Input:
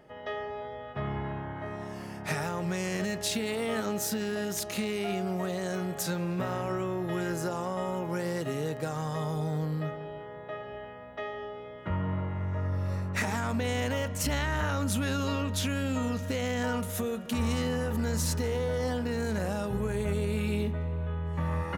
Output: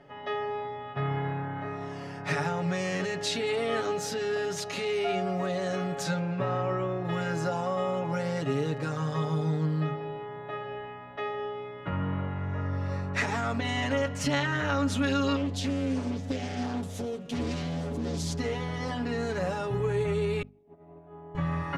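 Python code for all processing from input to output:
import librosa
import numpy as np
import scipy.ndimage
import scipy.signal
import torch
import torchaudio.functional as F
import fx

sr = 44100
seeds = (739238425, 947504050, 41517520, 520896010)

y = fx.chain(x, sr, fx.lowpass(hz=2700.0, slope=6),
    fx.doubler(ms=14.0, db=-12.5), at=(6.19, 7.05))
y = fx.chain(y, sr, fx.peak_eq(hz=1500.0, db=-12.5, octaves=1.8),
    fx.doppler_dist(depth_ms=0.6), at=(15.36, 18.39))
y = fx.chain(y, sr, fx.self_delay(depth_ms=0.13),
    fx.double_bandpass(hz=490.0, octaves=0.88),
    fx.over_compress(threshold_db=-52.0, ratio=-0.5), at=(20.42, 21.35))
y = scipy.signal.sosfilt(scipy.signal.butter(2, 5500.0, 'lowpass', fs=sr, output='sos'), y)
y = fx.hum_notches(y, sr, base_hz=50, count=5)
y = y + 0.93 * np.pad(y, (int(7.1 * sr / 1000.0), 0))[:len(y)]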